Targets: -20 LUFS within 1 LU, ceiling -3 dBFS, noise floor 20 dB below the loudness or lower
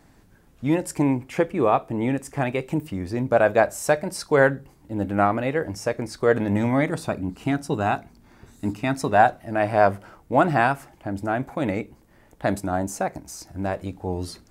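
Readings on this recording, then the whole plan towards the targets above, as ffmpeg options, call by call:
loudness -24.0 LUFS; peak -3.0 dBFS; loudness target -20.0 LUFS
-> -af "volume=4dB,alimiter=limit=-3dB:level=0:latency=1"

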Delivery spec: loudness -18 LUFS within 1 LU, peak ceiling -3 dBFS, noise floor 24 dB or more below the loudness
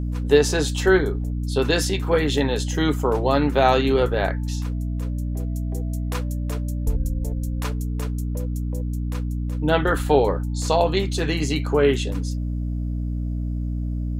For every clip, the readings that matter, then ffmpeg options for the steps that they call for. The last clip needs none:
hum 60 Hz; harmonics up to 300 Hz; hum level -23 dBFS; loudness -23.0 LUFS; peak -2.5 dBFS; loudness target -18.0 LUFS
-> -af "bandreject=f=60:t=h:w=6,bandreject=f=120:t=h:w=6,bandreject=f=180:t=h:w=6,bandreject=f=240:t=h:w=6,bandreject=f=300:t=h:w=6"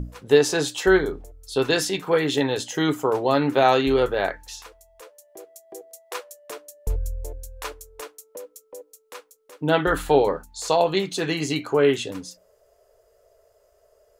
hum none; loudness -22.0 LUFS; peak -3.5 dBFS; loudness target -18.0 LUFS
-> -af "volume=4dB,alimiter=limit=-3dB:level=0:latency=1"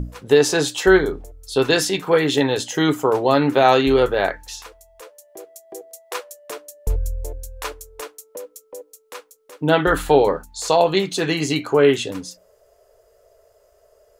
loudness -18.5 LUFS; peak -3.0 dBFS; noise floor -58 dBFS

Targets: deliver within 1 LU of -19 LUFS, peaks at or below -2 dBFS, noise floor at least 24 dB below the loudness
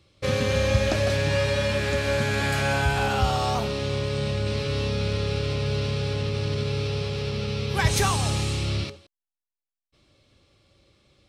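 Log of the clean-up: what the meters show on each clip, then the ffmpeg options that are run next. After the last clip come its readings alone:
loudness -25.0 LUFS; peak -8.5 dBFS; loudness target -19.0 LUFS
-> -af "volume=6dB"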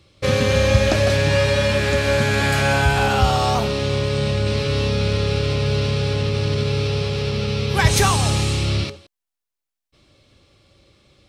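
loudness -19.0 LUFS; peak -2.5 dBFS; noise floor -84 dBFS

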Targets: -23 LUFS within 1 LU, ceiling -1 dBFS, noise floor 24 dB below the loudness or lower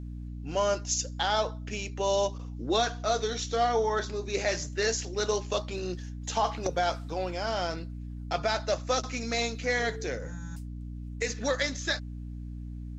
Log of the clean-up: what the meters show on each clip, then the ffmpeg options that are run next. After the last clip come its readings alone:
hum 60 Hz; harmonics up to 300 Hz; hum level -36 dBFS; loudness -30.0 LUFS; peak -15.0 dBFS; loudness target -23.0 LUFS
-> -af "bandreject=f=60:t=h:w=4,bandreject=f=120:t=h:w=4,bandreject=f=180:t=h:w=4,bandreject=f=240:t=h:w=4,bandreject=f=300:t=h:w=4"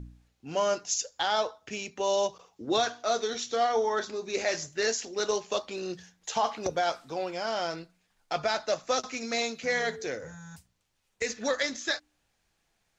hum none; loudness -30.5 LUFS; peak -15.5 dBFS; loudness target -23.0 LUFS
-> -af "volume=7.5dB"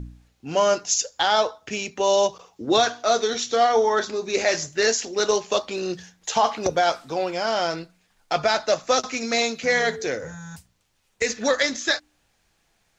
loudness -23.0 LUFS; peak -8.0 dBFS; noise floor -68 dBFS

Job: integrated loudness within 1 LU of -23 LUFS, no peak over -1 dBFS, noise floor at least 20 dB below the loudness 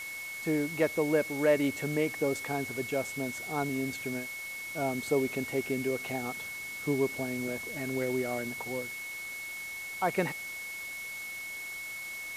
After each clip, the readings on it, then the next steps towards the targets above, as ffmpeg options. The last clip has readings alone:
steady tone 2200 Hz; tone level -38 dBFS; noise floor -40 dBFS; noise floor target -53 dBFS; loudness -32.5 LUFS; peak -13.0 dBFS; loudness target -23.0 LUFS
-> -af "bandreject=f=2.2k:w=30"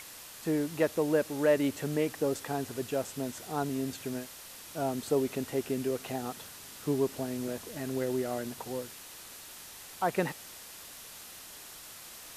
steady tone none; noise floor -48 dBFS; noise floor target -53 dBFS
-> -af "afftdn=nr=6:nf=-48"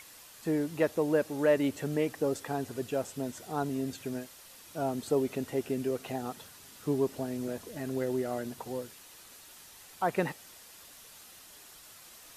noise floor -53 dBFS; loudness -33.0 LUFS; peak -13.5 dBFS; loudness target -23.0 LUFS
-> -af "volume=10dB"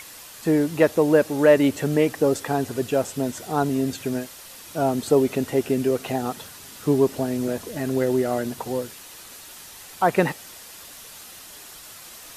loudness -23.0 LUFS; peak -3.5 dBFS; noise floor -43 dBFS

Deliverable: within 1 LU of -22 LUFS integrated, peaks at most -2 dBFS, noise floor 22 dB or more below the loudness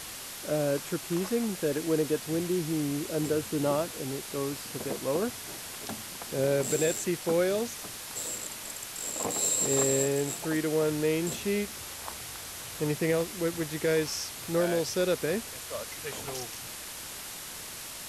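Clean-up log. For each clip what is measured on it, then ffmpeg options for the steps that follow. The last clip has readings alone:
noise floor -41 dBFS; noise floor target -53 dBFS; loudness -30.5 LUFS; peak -15.0 dBFS; loudness target -22.0 LUFS
-> -af "afftdn=nr=12:nf=-41"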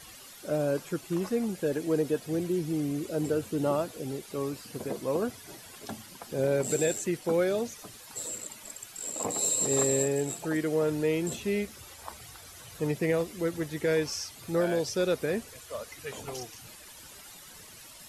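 noise floor -49 dBFS; noise floor target -52 dBFS
-> -af "afftdn=nr=6:nf=-49"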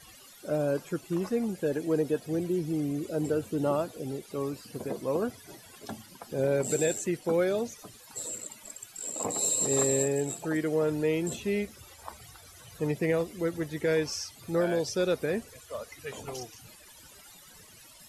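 noise floor -53 dBFS; loudness -30.0 LUFS; peak -15.5 dBFS; loudness target -22.0 LUFS
-> -af "volume=8dB"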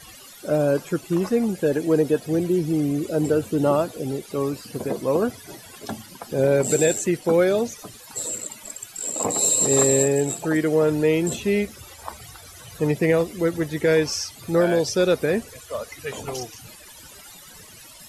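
loudness -22.0 LUFS; peak -7.5 dBFS; noise floor -45 dBFS

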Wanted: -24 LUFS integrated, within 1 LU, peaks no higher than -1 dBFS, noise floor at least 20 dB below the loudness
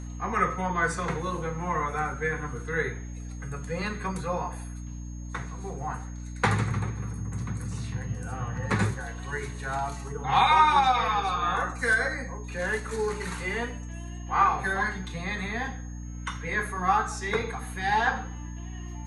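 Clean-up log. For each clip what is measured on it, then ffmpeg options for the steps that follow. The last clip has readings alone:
hum 60 Hz; harmonics up to 300 Hz; hum level -35 dBFS; steady tone 6500 Hz; tone level -52 dBFS; loudness -28.0 LUFS; peak -8.5 dBFS; loudness target -24.0 LUFS
-> -af "bandreject=f=60:t=h:w=4,bandreject=f=120:t=h:w=4,bandreject=f=180:t=h:w=4,bandreject=f=240:t=h:w=4,bandreject=f=300:t=h:w=4"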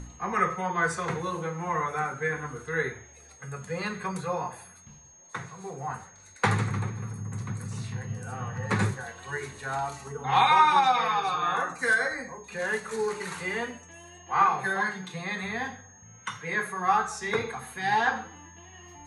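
hum none; steady tone 6500 Hz; tone level -52 dBFS
-> -af "bandreject=f=6.5k:w=30"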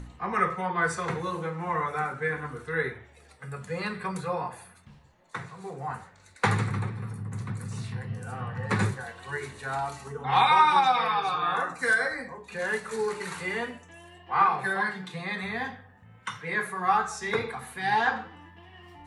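steady tone none; loudness -28.5 LUFS; peak -8.5 dBFS; loudness target -24.0 LUFS
-> -af "volume=4.5dB"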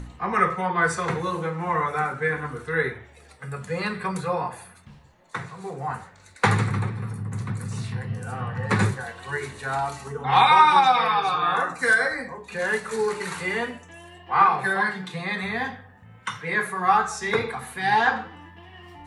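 loudness -24.0 LUFS; peak -4.0 dBFS; noise floor -51 dBFS

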